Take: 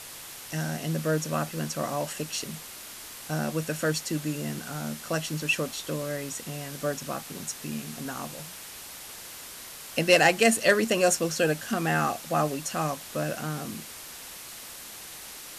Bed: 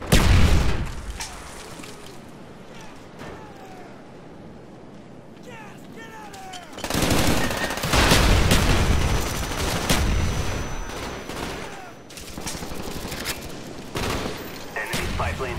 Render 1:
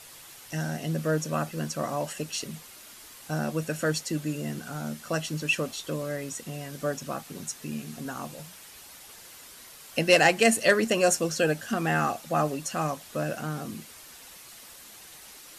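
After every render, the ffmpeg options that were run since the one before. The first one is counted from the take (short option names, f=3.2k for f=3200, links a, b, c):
-af "afftdn=nr=7:nf=-43"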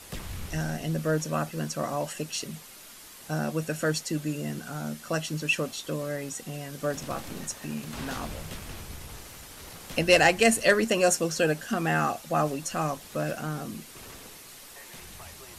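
-filter_complex "[1:a]volume=-22dB[a];[0:a][a]amix=inputs=2:normalize=0"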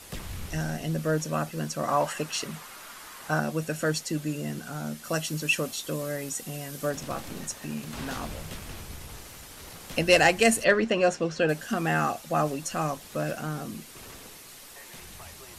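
-filter_complex "[0:a]asettb=1/sr,asplit=3[a][b][c];[a]atrim=end=1.884[d];[b]atrim=start=1.88:end=3.4,asetpts=PTS-STARTPTS,afade=t=in:d=0.004:c=qsin,afade=t=out:st=1.516:d=0.004:c=qsin,equalizer=f=1.2k:t=o:w=1.7:g=11.5[e];[c]atrim=start=3.396[f];[d][e]acrossfade=d=0.004:c1=hsin:c2=qsin[g];[g][f]acrossfade=d=0.004:c1=qsin:c2=hsin,asettb=1/sr,asplit=3[h][i][j];[h]atrim=end=5.044[k];[i]atrim=start=5.04:end=6.9,asetpts=PTS-STARTPTS,afade=t=in:d=0.004:c=qsin,afade=t=out:st=1.856:d=0.004:c=qsin,highshelf=f=7.6k:g=8[l];[j]atrim=start=6.896[m];[k][l]acrossfade=d=0.004:c1=hsin:c2=qsin[n];[n][m]acrossfade=d=0.004:c1=qsin:c2=hsin,asettb=1/sr,asplit=3[o][p][q];[o]atrim=end=10.644[r];[p]atrim=start=10.64:end=11.49,asetpts=PTS-STARTPTS,afade=t=in:d=0.004:c=qsin,afade=t=out:st=0.846:d=0.004:c=qsin,lowpass=3.6k[s];[q]atrim=start=11.486[t];[r][s]acrossfade=d=0.004:c1=hsin:c2=qsin[u];[u][t]acrossfade=d=0.004:c1=qsin:c2=hsin"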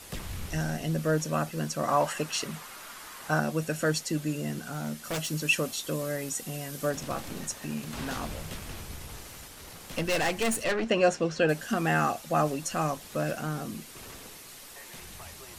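-filter_complex "[0:a]asettb=1/sr,asplit=3[a][b][c];[a]atrim=end=4.704[d];[b]atrim=start=4.7:end=5.3,asetpts=PTS-STARTPTS,afade=t=in:d=0.004:c=qsin,afade=t=out:st=0.596:d=0.004:c=qsin,aeval=exprs='0.0501*(abs(mod(val(0)/0.0501+3,4)-2)-1)':c=same[e];[c]atrim=start=5.296[f];[d][e]acrossfade=d=0.004:c1=hsin:c2=qsin[g];[g][f]acrossfade=d=0.004:c1=qsin:c2=hsin,asettb=1/sr,asplit=3[h][i][j];[h]atrim=end=9.484[k];[i]atrim=start=9.48:end=10.89,asetpts=PTS-STARTPTS,afade=t=in:d=0.004:c=qsin,afade=t=out:st=1.406:d=0.004:c=qsin,aeval=exprs='(tanh(15.8*val(0)+0.45)-tanh(0.45))/15.8':c=same[l];[j]atrim=start=10.886[m];[k][l]acrossfade=d=0.004:c1=hsin:c2=qsin[n];[n][m]acrossfade=d=0.004:c1=qsin:c2=hsin"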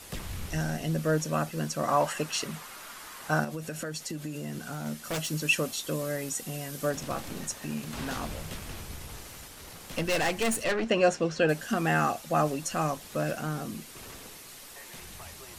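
-filter_complex "[0:a]asettb=1/sr,asplit=3[a][b][c];[a]atrim=end=3.444[d];[b]atrim=start=3.44:end=4.86,asetpts=PTS-STARTPTS,afade=t=in:d=0.004:c=qsin,afade=t=out:st=1.416:d=0.004:c=qsin,acompressor=threshold=-31dB:ratio=12:attack=3.2:release=140:knee=1:detection=peak[e];[c]atrim=start=4.856[f];[d][e]acrossfade=d=0.004:c1=hsin:c2=qsin[g];[g][f]acrossfade=d=0.004:c1=qsin:c2=hsin"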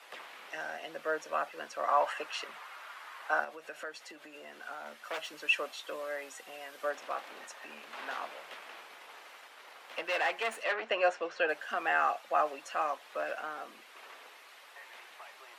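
-filter_complex "[0:a]highpass=f=250:w=0.5412,highpass=f=250:w=1.3066,acrossover=split=550 3300:gain=0.0708 1 0.112[a][b][c];[a][b][c]amix=inputs=3:normalize=0"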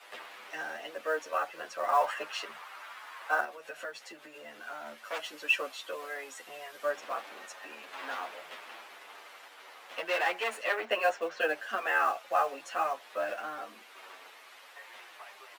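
-filter_complex "[0:a]asplit=2[a][b];[b]acrusher=bits=4:mode=log:mix=0:aa=0.000001,volume=-4dB[c];[a][c]amix=inputs=2:normalize=0,asplit=2[d][e];[e]adelay=9.5,afreqshift=-0.46[f];[d][f]amix=inputs=2:normalize=1"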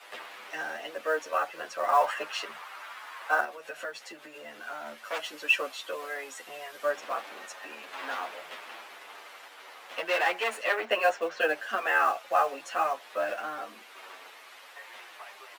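-af "volume=3dB"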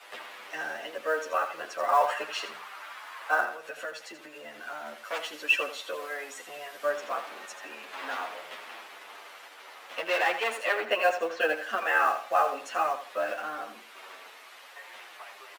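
-af "aecho=1:1:82|164|246:0.299|0.0806|0.0218"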